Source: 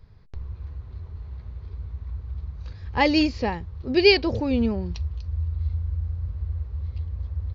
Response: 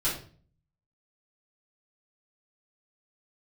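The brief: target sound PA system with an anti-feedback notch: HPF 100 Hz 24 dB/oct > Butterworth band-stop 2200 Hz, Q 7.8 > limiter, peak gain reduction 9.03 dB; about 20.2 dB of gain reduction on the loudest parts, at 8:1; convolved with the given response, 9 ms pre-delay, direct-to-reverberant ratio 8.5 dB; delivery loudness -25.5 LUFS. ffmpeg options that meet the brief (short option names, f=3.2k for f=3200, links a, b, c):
-filter_complex "[0:a]acompressor=threshold=-32dB:ratio=8,asplit=2[a][b];[1:a]atrim=start_sample=2205,adelay=9[c];[b][c]afir=irnorm=-1:irlink=0,volume=-16.5dB[d];[a][d]amix=inputs=2:normalize=0,highpass=f=100:w=0.5412,highpass=f=100:w=1.3066,asuperstop=centerf=2200:order=8:qfactor=7.8,volume=17.5dB,alimiter=limit=-12.5dB:level=0:latency=1"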